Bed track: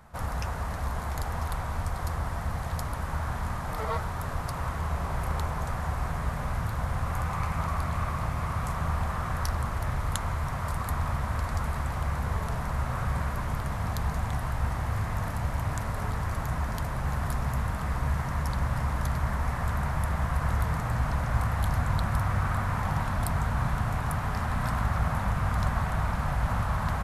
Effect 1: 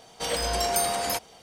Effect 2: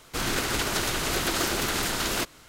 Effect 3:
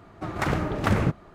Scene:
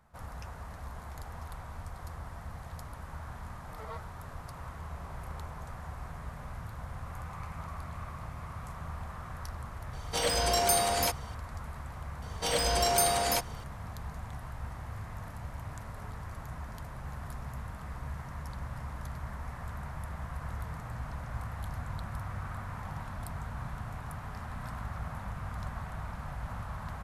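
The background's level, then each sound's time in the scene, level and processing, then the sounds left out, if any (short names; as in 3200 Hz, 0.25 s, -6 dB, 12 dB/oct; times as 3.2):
bed track -11.5 dB
9.93 add 1 -1 dB
12.22 add 1 -1 dB
not used: 2, 3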